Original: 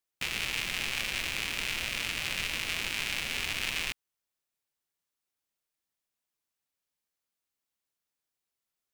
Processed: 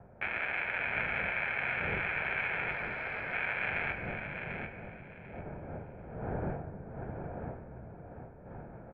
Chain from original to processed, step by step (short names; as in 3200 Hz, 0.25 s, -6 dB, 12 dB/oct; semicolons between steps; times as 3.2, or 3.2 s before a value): 2.71–3.33 self-modulated delay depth 0.23 ms; wind noise 220 Hz -37 dBFS; comb 1.2 ms, depth 57%; feedback echo 0.743 s, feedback 21%, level -7.5 dB; on a send at -7 dB: reverb RT60 2.5 s, pre-delay 6 ms; on the sum: mistuned SSB -150 Hz 300–2300 Hz; gain +2.5 dB